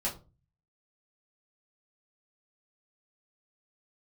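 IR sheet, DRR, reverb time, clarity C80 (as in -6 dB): -5.5 dB, 0.35 s, 17.5 dB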